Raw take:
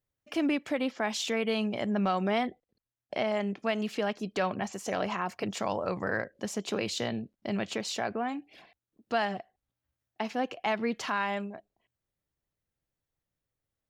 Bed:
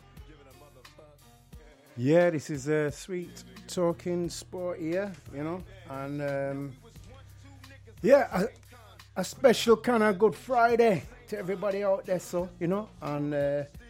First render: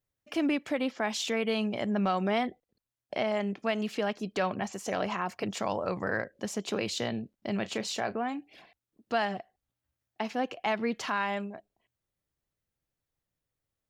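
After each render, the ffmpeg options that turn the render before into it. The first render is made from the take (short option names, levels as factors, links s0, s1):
-filter_complex "[0:a]asettb=1/sr,asplit=3[s0][s1][s2];[s0]atrim=end=7.614[s3];[s1]atrim=start=7.61:end=8.18,asetpts=PTS-STARTPTS,afade=t=in:d=0.004:c=qsin,afade=t=out:st=0.566:d=0.004:c=qsin,asplit=2[s4][s5];[s5]adelay=32,volume=0.2[s6];[s4][s6]amix=inputs=2:normalize=0,atrim=end_sample=25137[s7];[s2]atrim=start=8.176[s8];[s3][s7]acrossfade=d=0.004:c1=hsin:c2=qsin[s9];[s9][s8]acrossfade=d=0.004:c1=qsin:c2=hsin"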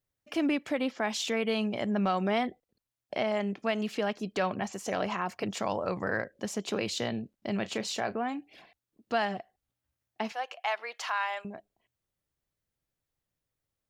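-filter_complex "[0:a]asettb=1/sr,asplit=3[s0][s1][s2];[s0]atrim=end=10.324[s3];[s1]atrim=start=10.32:end=11.45,asetpts=PTS-STARTPTS,afade=t=in:d=0.004:c=qsin,afade=t=out:st=1.126:d=0.004:c=qsin,highpass=f=650:w=0.5412,highpass=f=650:w=1.3066[s4];[s2]atrim=start=11.446[s5];[s3][s4]acrossfade=d=0.004:c1=hsin:c2=qsin[s6];[s6][s5]acrossfade=d=0.004:c1=qsin:c2=hsin"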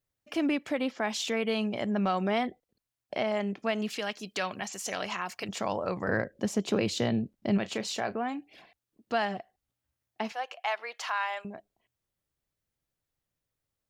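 -filter_complex "[0:a]asettb=1/sr,asplit=3[s0][s1][s2];[s0]atrim=end=3.904[s3];[s1]atrim=start=3.9:end=5.49,asetpts=PTS-STARTPTS,afade=t=in:d=0.004:c=qsin,afade=t=out:st=1.586:d=0.004:c=qsin,tiltshelf=f=1500:g=-7[s4];[s2]atrim=start=5.486[s5];[s3][s4]acrossfade=d=0.004:c1=hsin:c2=qsin[s6];[s6][s5]acrossfade=d=0.004:c1=qsin:c2=hsin,asettb=1/sr,asplit=3[s7][s8][s9];[s7]atrim=end=6.084[s10];[s8]atrim=start=6.08:end=7.58,asetpts=PTS-STARTPTS,afade=t=in:d=0.004:c=qsin,afade=t=out:st=1.496:d=0.004:c=qsin,lowshelf=f=430:g=8[s11];[s9]atrim=start=7.576[s12];[s10][s11]acrossfade=d=0.004:c1=hsin:c2=qsin[s13];[s13][s12]acrossfade=d=0.004:c1=qsin:c2=hsin"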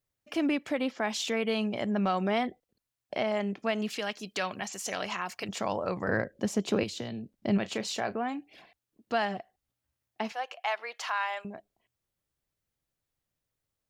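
-filter_complex "[0:a]asettb=1/sr,asplit=3[s0][s1][s2];[s0]atrim=end=6.834[s3];[s1]atrim=start=6.83:end=7.33,asetpts=PTS-STARTPTS,afade=t=in:d=0.004:c=qsin,afade=t=out:st=0.496:d=0.004:c=qsin,acrossover=split=260|3000[s4][s5][s6];[s4]acompressor=threshold=0.00891:ratio=4[s7];[s5]acompressor=threshold=0.01:ratio=4[s8];[s6]acompressor=threshold=0.00891:ratio=4[s9];[s7][s8][s9]amix=inputs=3:normalize=0[s10];[s2]atrim=start=7.326[s11];[s3][s10]acrossfade=d=0.004:c1=hsin:c2=qsin[s12];[s12][s11]acrossfade=d=0.004:c1=qsin:c2=hsin"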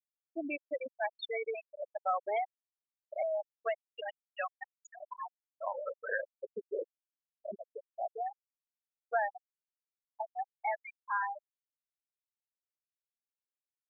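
-af "highpass=550,afftfilt=real='re*gte(hypot(re,im),0.112)':imag='im*gte(hypot(re,im),0.112)':win_size=1024:overlap=0.75"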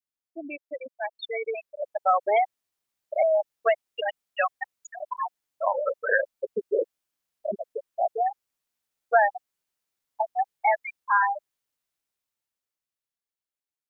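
-af "dynaudnorm=f=160:g=21:m=3.98"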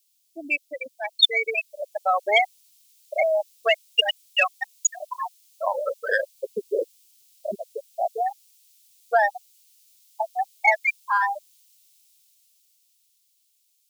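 -af "aexciter=amount=7.9:drive=8.7:freq=2400"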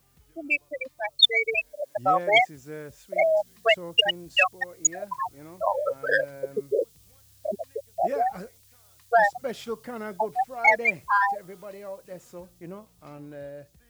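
-filter_complex "[1:a]volume=0.266[s0];[0:a][s0]amix=inputs=2:normalize=0"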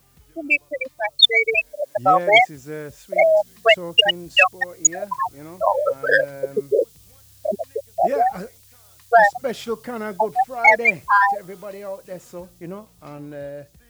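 -af "volume=2.11,alimiter=limit=0.891:level=0:latency=1"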